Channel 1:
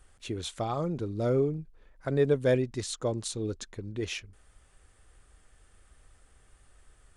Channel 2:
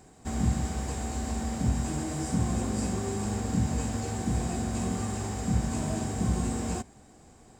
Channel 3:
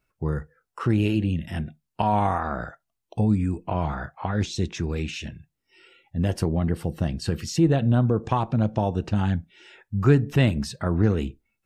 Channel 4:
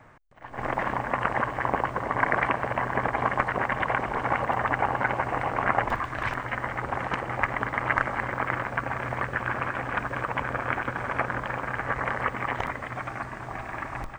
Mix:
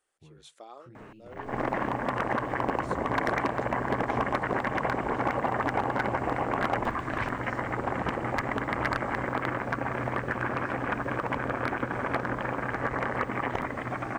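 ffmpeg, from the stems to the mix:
-filter_complex "[0:a]highpass=f=310:w=0.5412,highpass=f=310:w=1.3066,volume=0.2[s0];[1:a]acrossover=split=2800[s1][s2];[s2]acompressor=threshold=0.002:ratio=4:attack=1:release=60[s3];[s1][s3]amix=inputs=2:normalize=0,adelay=2500,volume=0.299[s4];[2:a]acompressor=threshold=0.0282:ratio=2.5,flanger=delay=18:depth=6.2:speed=0.46,volume=0.106,asplit=2[s5][s6];[3:a]equalizer=f=300:w=0.68:g=8.5,volume=4.47,asoftclip=hard,volume=0.224,adelay=950,volume=1.26[s7];[s6]apad=whole_len=315780[s8];[s0][s8]sidechaincompress=threshold=0.00158:ratio=8:attack=5.7:release=170[s9];[s9][s4][s5][s7]amix=inputs=4:normalize=0,acompressor=threshold=0.0158:ratio=1.5"

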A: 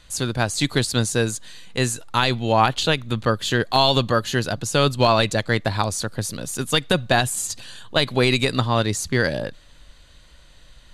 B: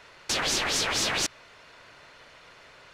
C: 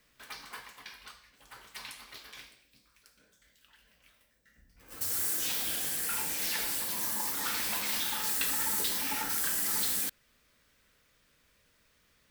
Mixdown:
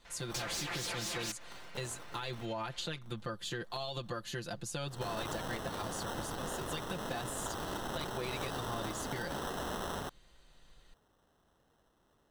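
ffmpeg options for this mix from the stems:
-filter_complex "[0:a]volume=0.168[s0];[1:a]asoftclip=type=hard:threshold=0.0422,adelay=50,volume=0.531[s1];[2:a]acrusher=samples=19:mix=1:aa=0.000001,volume=0.668,asplit=3[s2][s3][s4];[s2]atrim=end=2.46,asetpts=PTS-STARTPTS,afade=t=out:st=2.456:d=0.004:c=hsin[s5];[s3]atrim=start=2.46:end=3.02,asetpts=PTS-STARTPTS,volume=0[s6];[s4]atrim=start=3.02,asetpts=PTS-STARTPTS,afade=t=in:d=0.004:c=hsin[s7];[s5][s6][s7]concat=n=3:v=0:a=1[s8];[s0][s1]amix=inputs=2:normalize=0,aecho=1:1:5.8:0.84,alimiter=limit=0.0631:level=0:latency=1:release=107,volume=1[s9];[s8][s9]amix=inputs=2:normalize=0,acompressor=threshold=0.0141:ratio=2.5"

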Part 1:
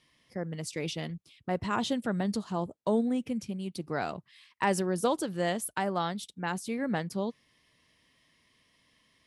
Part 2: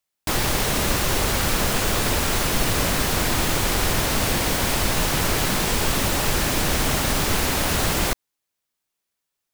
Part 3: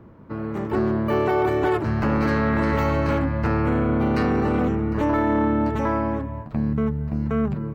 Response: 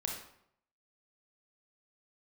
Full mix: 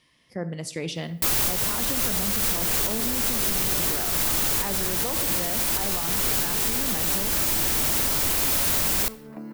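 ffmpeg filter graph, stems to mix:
-filter_complex "[0:a]volume=1.19,asplit=2[s0][s1];[s1]volume=0.376[s2];[1:a]aemphasis=mode=production:type=50kf,asoftclip=type=hard:threshold=0.112,adelay=950,volume=1.26,asplit=2[s3][s4];[s4]volume=0.119[s5];[2:a]highpass=f=250:w=0.5412,highpass=f=250:w=1.3066,acompressor=threshold=0.0251:ratio=6,adelay=2250,volume=0.841[s6];[3:a]atrim=start_sample=2205[s7];[s2][s5]amix=inputs=2:normalize=0[s8];[s8][s7]afir=irnorm=-1:irlink=0[s9];[s0][s3][s6][s9]amix=inputs=4:normalize=0,alimiter=limit=0.112:level=0:latency=1:release=239"

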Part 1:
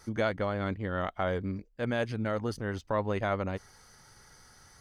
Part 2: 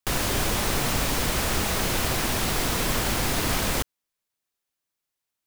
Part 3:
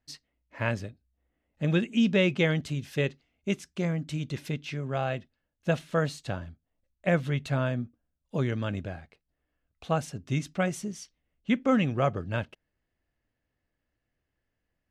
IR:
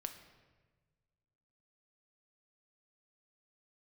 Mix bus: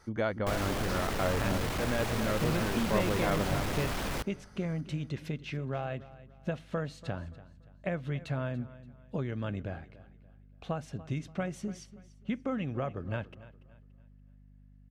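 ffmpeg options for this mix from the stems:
-filter_complex "[0:a]volume=0.841,asplit=2[s0][s1];[s1]volume=0.398[s2];[1:a]volume=23.7,asoftclip=hard,volume=0.0422,adelay=400,volume=0.668,asplit=2[s3][s4];[s4]volume=0.211[s5];[2:a]acompressor=threshold=0.0282:ratio=5,aeval=exprs='val(0)+0.00178*(sin(2*PI*50*n/s)+sin(2*PI*2*50*n/s)/2+sin(2*PI*3*50*n/s)/3+sin(2*PI*4*50*n/s)/4+sin(2*PI*5*50*n/s)/5)':c=same,adelay=800,volume=0.944,asplit=3[s6][s7][s8];[s7]volume=0.133[s9];[s8]volume=0.141[s10];[3:a]atrim=start_sample=2205[s11];[s5][s9]amix=inputs=2:normalize=0[s12];[s12][s11]afir=irnorm=-1:irlink=0[s13];[s2][s10]amix=inputs=2:normalize=0,aecho=0:1:287|574|861|1148|1435:1|0.34|0.116|0.0393|0.0134[s14];[s0][s3][s6][s13][s14]amix=inputs=5:normalize=0,highshelf=f=4300:g=-11"

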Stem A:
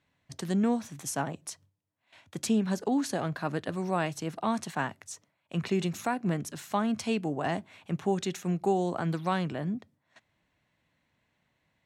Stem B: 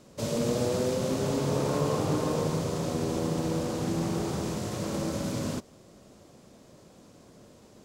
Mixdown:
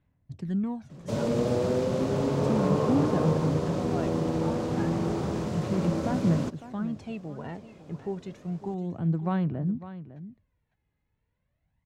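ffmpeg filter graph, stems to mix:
-filter_complex "[0:a]aemphasis=mode=reproduction:type=riaa,aphaser=in_gain=1:out_gain=1:delay=2.4:decay=0.57:speed=0.32:type=sinusoidal,volume=0.282,asplit=2[s0][s1];[s1]volume=0.2[s2];[1:a]lowpass=f=2100:p=1,adelay=900,volume=1.26[s3];[s2]aecho=0:1:554:1[s4];[s0][s3][s4]amix=inputs=3:normalize=0"

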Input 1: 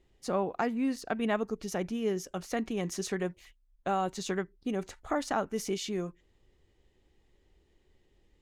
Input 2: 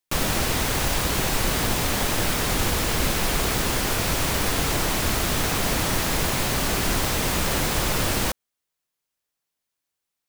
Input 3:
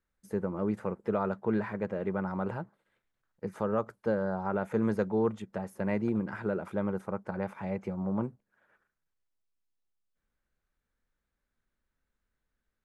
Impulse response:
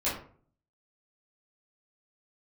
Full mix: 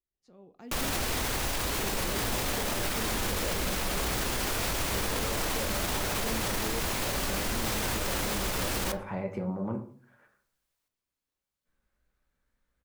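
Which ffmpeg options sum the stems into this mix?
-filter_complex "[0:a]lowpass=6200,acrossover=split=440|3000[s0][s1][s2];[s1]acompressor=threshold=0.002:ratio=2[s3];[s0][s3][s2]amix=inputs=3:normalize=0,aeval=exprs='val(0)*pow(10,-30*if(lt(mod(-1.1*n/s,1),2*abs(-1.1)/1000),1-mod(-1.1*n/s,1)/(2*abs(-1.1)/1000),(mod(-1.1*n/s,1)-2*abs(-1.1)/1000)/(1-2*abs(-1.1)/1000))/20)':c=same,volume=0.631,asplit=2[s4][s5];[s5]volume=0.1[s6];[1:a]equalizer=f=150:t=o:w=1.1:g=-4.5,adelay=600,volume=0.891,asplit=2[s7][s8];[s8]volume=0.0794[s9];[2:a]acompressor=threshold=0.0224:ratio=6,adelay=1500,volume=1.19,asplit=2[s10][s11];[s11]volume=0.316[s12];[3:a]atrim=start_sample=2205[s13];[s6][s9][s12]amix=inputs=3:normalize=0[s14];[s14][s13]afir=irnorm=-1:irlink=0[s15];[s4][s7][s10][s15]amix=inputs=4:normalize=0,alimiter=limit=0.0891:level=0:latency=1"

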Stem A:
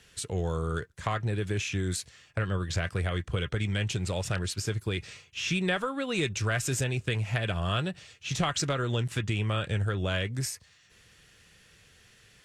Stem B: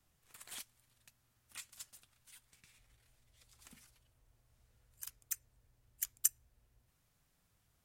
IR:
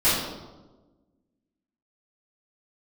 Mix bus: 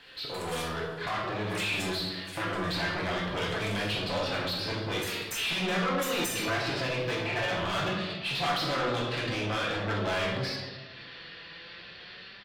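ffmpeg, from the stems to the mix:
-filter_complex "[0:a]firequalizer=gain_entry='entry(2800,0);entry(4400,6);entry(6700,-27)':delay=0.05:min_phase=1,asoftclip=type=tanh:threshold=0.02,volume=0.376,asplit=2[s0][s1];[s1]volume=0.237[s2];[1:a]volume=0.708,asplit=2[s3][s4];[s4]volume=0.299[s5];[2:a]atrim=start_sample=2205[s6];[s2][s5]amix=inputs=2:normalize=0[s7];[s7][s6]afir=irnorm=-1:irlink=0[s8];[s0][s3][s8]amix=inputs=3:normalize=0,dynaudnorm=f=940:g=3:m=1.78,asplit=2[s9][s10];[s10]highpass=f=720:p=1,volume=17.8,asoftclip=type=tanh:threshold=0.2[s11];[s9][s11]amix=inputs=2:normalize=0,lowpass=f=2400:p=1,volume=0.501,flanger=delay=3.8:depth=2.2:regen=68:speed=0.22:shape=sinusoidal"

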